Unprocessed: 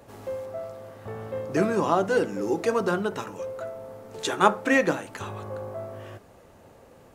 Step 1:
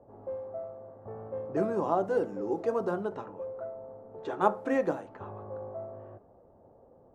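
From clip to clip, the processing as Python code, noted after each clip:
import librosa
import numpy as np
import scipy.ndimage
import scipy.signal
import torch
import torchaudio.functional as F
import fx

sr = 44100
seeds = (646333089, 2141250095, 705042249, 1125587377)

y = fx.env_lowpass(x, sr, base_hz=830.0, full_db=-20.5)
y = fx.curve_eq(y, sr, hz=(170.0, 750.0, 2300.0), db=(0, 5, -10))
y = F.gain(torch.from_numpy(y), -8.0).numpy()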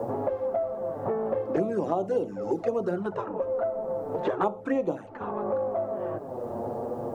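y = fx.env_flanger(x, sr, rest_ms=9.4, full_db=-24.5)
y = fx.band_squash(y, sr, depth_pct=100)
y = F.gain(torch.from_numpy(y), 5.0).numpy()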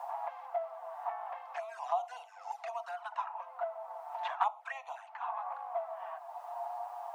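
y = scipy.signal.sosfilt(scipy.signal.cheby1(6, 6, 680.0, 'highpass', fs=sr, output='sos'), x)
y = F.gain(torch.from_numpy(y), 2.0).numpy()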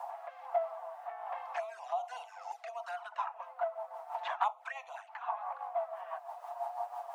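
y = fx.rotary_switch(x, sr, hz=1.2, then_hz=6.0, switch_at_s=2.65)
y = F.gain(torch.from_numpy(y), 4.0).numpy()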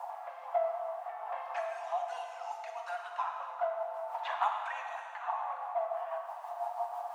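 y = fx.rev_plate(x, sr, seeds[0], rt60_s=2.2, hf_ratio=0.95, predelay_ms=0, drr_db=1.5)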